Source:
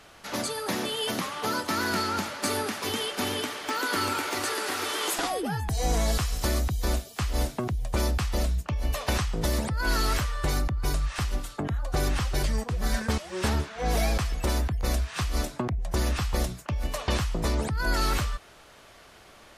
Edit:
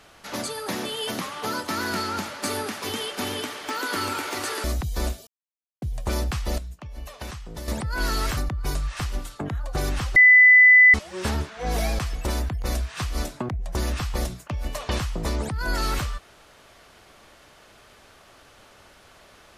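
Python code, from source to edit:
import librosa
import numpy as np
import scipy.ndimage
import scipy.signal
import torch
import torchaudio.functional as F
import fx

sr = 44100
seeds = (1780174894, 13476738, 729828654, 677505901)

y = fx.edit(x, sr, fx.cut(start_s=4.64, length_s=1.87),
    fx.silence(start_s=7.14, length_s=0.55),
    fx.clip_gain(start_s=8.45, length_s=1.1, db=-9.5),
    fx.cut(start_s=10.24, length_s=0.32),
    fx.bleep(start_s=12.35, length_s=0.78, hz=2000.0, db=-9.0), tone=tone)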